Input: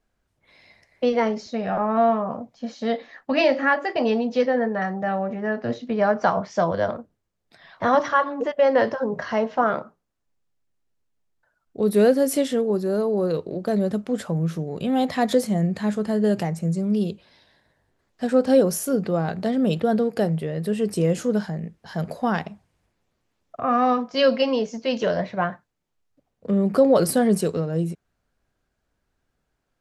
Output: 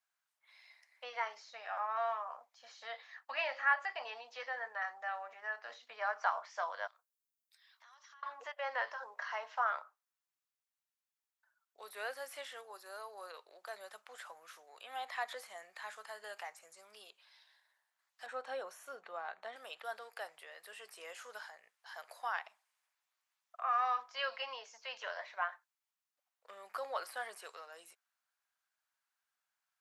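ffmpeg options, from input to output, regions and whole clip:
ffmpeg -i in.wav -filter_complex "[0:a]asettb=1/sr,asplit=3[link_01][link_02][link_03];[link_01]atrim=end=6.874[link_04];[link_02]atrim=start=6.87:end=8.23,asetpts=PTS-STARTPTS,afade=type=in:duration=0.004:curve=qsin,afade=type=out:start_time=1.356:duration=0.004:curve=qsin,aderivative,acompressor=threshold=-49dB:ratio=6:attack=3.2:release=140:knee=1:detection=peak[link_05];[link_03]atrim=start=8.226[link_06];[link_04][link_05]acrossfade=duration=0.004:curve1=hsin:curve2=qsin[link_07];[link_07][link_06]acrossfade=duration=0.004:curve1=qsin:curve2=hsin,asettb=1/sr,asplit=3[link_08][link_09][link_10];[link_08]atrim=end=18.264[link_11];[link_09]atrim=start=18.26:end=19.56,asetpts=PTS-STARTPTS,afade=type=in:duration=0.004:curve=qsin,afade=type=out:start_time=1.296:duration=0.004:curve=qsin,asuperstop=centerf=4900:order=4:qfactor=7,aemphasis=mode=reproduction:type=riaa[link_12];[link_10]atrim=start=19.556[link_13];[link_11][link_12]acrossfade=duration=0.004:curve1=hsin:curve2=qsin[link_14];[link_14][link_13]acrossfade=duration=0.004:curve1=qsin:curve2=hsin,highpass=frequency=920:width=0.5412,highpass=frequency=920:width=1.3066,acrossover=split=2900[link_15][link_16];[link_16]acompressor=threshold=-50dB:ratio=4:attack=1:release=60[link_17];[link_15][link_17]amix=inputs=2:normalize=0,highshelf=frequency=10000:gain=8.5,volume=-8dB" out.wav

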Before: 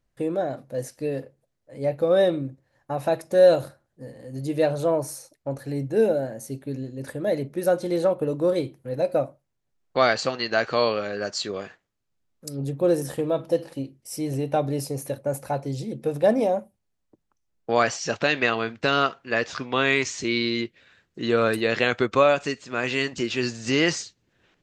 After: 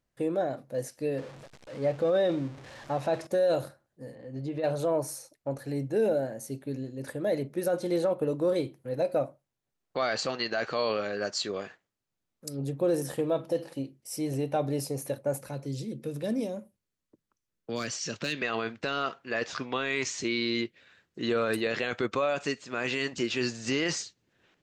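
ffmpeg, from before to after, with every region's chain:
ffmpeg -i in.wav -filter_complex "[0:a]asettb=1/sr,asplit=3[link_01][link_02][link_03];[link_01]atrim=end=1.184[link_04];[link_02]atrim=start=1.18:end=3.27,asetpts=PTS-STARTPTS,afade=type=in:duration=0.004:curve=qsin,afade=type=out:start_time=2.086:duration=0.004:curve=qsin,aeval=exprs='val(0)+0.5*0.0126*sgn(val(0))':channel_layout=same,lowpass=6400[link_05];[link_03]atrim=start=3.266[link_06];[link_04][link_05]acrossfade=duration=0.004:curve1=hsin:curve2=qsin[link_07];[link_07][link_06]acrossfade=duration=0.004:curve1=qsin:curve2=hsin,asettb=1/sr,asplit=3[link_08][link_09][link_10];[link_08]atrim=end=4.154[link_11];[link_09]atrim=start=4.15:end=4.64,asetpts=PTS-STARTPTS,afade=type=in:duration=0.004:curve=qsin,afade=type=out:start_time=0.486:duration=0.004:curve=qsin,lowpass=3400,acompressor=threshold=-26dB:ratio=10:attack=3.2:release=140:knee=1:detection=peak[link_12];[link_10]atrim=start=4.636[link_13];[link_11][link_12]acrossfade=duration=0.004:curve1=hsin:curve2=qsin[link_14];[link_14][link_13]acrossfade=duration=0.004:curve1=qsin:curve2=hsin,asettb=1/sr,asplit=3[link_15][link_16][link_17];[link_15]atrim=end=15.414[link_18];[link_16]atrim=start=15.41:end=18.42,asetpts=PTS-STARTPTS,afade=type=in:duration=0.004:curve=qsin,afade=type=out:start_time=3.006:duration=0.004:curve=qsin,equalizer=frequency=760:width_type=o:width=0.45:gain=-9.5,asoftclip=type=hard:threshold=-11.5dB,acrossover=split=320|3000[link_19][link_20][link_21];[link_20]acompressor=threshold=-42dB:ratio=2:attack=3.2:release=140:knee=2.83:detection=peak[link_22];[link_19][link_22][link_21]amix=inputs=3:normalize=0[link_23];[link_17]atrim=start=18.416[link_24];[link_18][link_23]acrossfade=duration=0.004:curve1=hsin:curve2=qsin[link_25];[link_25][link_24]acrossfade=duration=0.004:curve1=qsin:curve2=hsin,lowshelf=frequency=68:gain=-10.5,alimiter=limit=-16dB:level=0:latency=1:release=10,volume=-2.5dB" out.wav

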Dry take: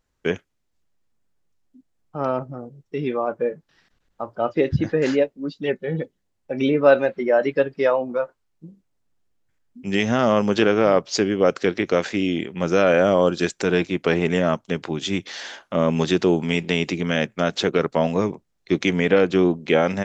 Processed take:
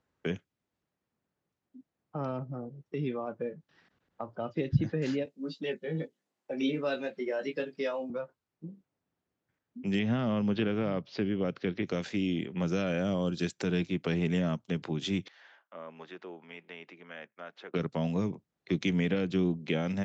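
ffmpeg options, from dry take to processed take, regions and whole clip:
ffmpeg -i in.wav -filter_complex "[0:a]asettb=1/sr,asplit=3[link_01][link_02][link_03];[link_01]atrim=end=5.254[link_04];[link_02]atrim=start=5.25:end=8.1,asetpts=PTS-STARTPTS,afade=type=in:duration=0.004:curve=qsin,afade=type=out:start_time=2.846:duration=0.004:curve=qsin,highpass=250,highshelf=frequency=5800:gain=10.5,asplit=2[link_05][link_06];[link_06]adelay=19,volume=-4dB[link_07];[link_05][link_07]amix=inputs=2:normalize=0,atrim=end_sample=125685[link_08];[link_03]atrim=start=8.096[link_09];[link_04][link_08]acrossfade=duration=0.004:curve1=hsin:curve2=qsin[link_10];[link_10][link_09]acrossfade=duration=0.004:curve1=qsin:curve2=hsin,asettb=1/sr,asplit=3[link_11][link_12][link_13];[link_11]atrim=end=9.994[link_14];[link_12]atrim=start=9.99:end=11.83,asetpts=PTS-STARTPTS,afade=type=in:duration=0.004:curve=qsin,afade=type=out:start_time=1.836:duration=0.004:curve=qsin,acrossover=split=3800[link_15][link_16];[link_16]acompressor=threshold=-50dB:ratio=4:attack=1:release=60[link_17];[link_15][link_17]amix=inputs=2:normalize=0,lowpass=frequency=5300:width=0.5412,lowpass=frequency=5300:width=1.3066[link_18];[link_13]atrim=start=11.826[link_19];[link_14][link_18]acrossfade=duration=0.004:curve1=hsin:curve2=qsin[link_20];[link_20][link_19]acrossfade=duration=0.004:curve1=qsin:curve2=hsin,asettb=1/sr,asplit=3[link_21][link_22][link_23];[link_21]atrim=end=15.284[link_24];[link_22]atrim=start=15.28:end=17.74,asetpts=PTS-STARTPTS,afade=type=in:duration=0.004:curve=qsin,afade=type=out:start_time=2.456:duration=0.004:curve=qsin,lowpass=1600,aderivative[link_25];[link_23]atrim=start=17.736[link_26];[link_24][link_25]acrossfade=duration=0.004:curve1=hsin:curve2=qsin[link_27];[link_27][link_26]acrossfade=duration=0.004:curve1=qsin:curve2=hsin,highpass=110,aemphasis=mode=reproduction:type=75fm,acrossover=split=200|3000[link_28][link_29][link_30];[link_29]acompressor=threshold=-37dB:ratio=3[link_31];[link_28][link_31][link_30]amix=inputs=3:normalize=0,volume=-1.5dB" out.wav

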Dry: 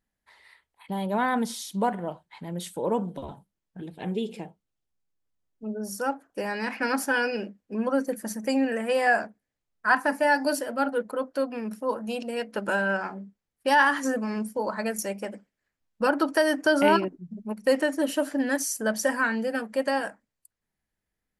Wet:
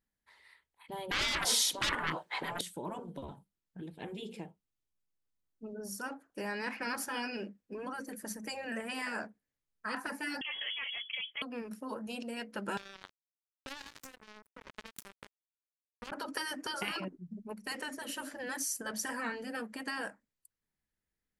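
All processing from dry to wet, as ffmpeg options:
ffmpeg -i in.wav -filter_complex "[0:a]asettb=1/sr,asplit=3[link_01][link_02][link_03];[link_01]atrim=end=1.114[link_04];[link_02]atrim=start=1.11:end=2.61,asetpts=PTS-STARTPTS,afade=type=in:duration=0.004:curve=qsin,afade=type=out:start_time=1.496:duration=0.004:curve=qsin,equalizer=frequency=500:width=0.58:gain=13.5,asplit=2[link_05][link_06];[link_06]highpass=frequency=720:poles=1,volume=22dB,asoftclip=type=tanh:threshold=-2dB[link_07];[link_05][link_07]amix=inputs=2:normalize=0,lowpass=frequency=7600:poles=1,volume=-6dB[link_08];[link_03]atrim=start=2.606[link_09];[link_04][link_08]acrossfade=duration=0.004:curve1=hsin:curve2=qsin[link_10];[link_10][link_09]acrossfade=duration=0.004:curve1=qsin:curve2=hsin,asettb=1/sr,asplit=3[link_11][link_12][link_13];[link_11]atrim=end=10.414[link_14];[link_12]atrim=start=10.41:end=11.42,asetpts=PTS-STARTPTS,afade=type=in:duration=0.004:curve=qsin,afade=type=out:start_time=1.006:duration=0.004:curve=qsin,highpass=270,acontrast=45,lowpass=frequency=3100:width_type=q:width=0.5098,lowpass=frequency=3100:width_type=q:width=0.6013,lowpass=frequency=3100:width_type=q:width=0.9,lowpass=frequency=3100:width_type=q:width=2.563,afreqshift=-3600[link_15];[link_13]atrim=start=11.416[link_16];[link_14][link_15]acrossfade=duration=0.004:curve1=hsin:curve2=qsin[link_17];[link_17][link_16]acrossfade=duration=0.004:curve1=qsin:curve2=hsin,asettb=1/sr,asplit=3[link_18][link_19][link_20];[link_18]atrim=end=12.774[link_21];[link_19]atrim=start=12.77:end=16.12,asetpts=PTS-STARTPTS,afade=type=in:duration=0.004:curve=qsin,afade=type=out:start_time=3.346:duration=0.004:curve=qsin,highpass=frequency=180:width=0.5412,highpass=frequency=180:width=1.3066,acompressor=threshold=-28dB:ratio=8:attack=3.2:release=140:knee=1:detection=peak,acrusher=bits=3:mix=0:aa=0.5[link_22];[link_20]atrim=start=16.116[link_23];[link_21][link_22]acrossfade=duration=0.004:curve1=hsin:curve2=qsin[link_24];[link_24][link_23]acrossfade=duration=0.004:curve1=qsin:curve2=hsin,afftfilt=real='re*lt(hypot(re,im),0.282)':imag='im*lt(hypot(re,im),0.282)':win_size=1024:overlap=0.75,equalizer=frequency=700:width_type=o:width=0.61:gain=-4,volume=-5.5dB" out.wav

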